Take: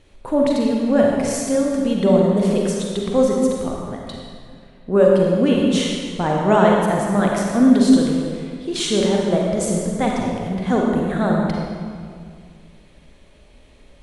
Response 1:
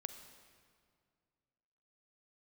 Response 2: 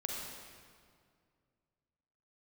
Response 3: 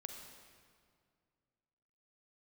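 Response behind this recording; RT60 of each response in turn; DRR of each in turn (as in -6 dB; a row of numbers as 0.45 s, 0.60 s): 2; 2.1 s, 2.1 s, 2.1 s; 8.5 dB, -1.5 dB, 3.5 dB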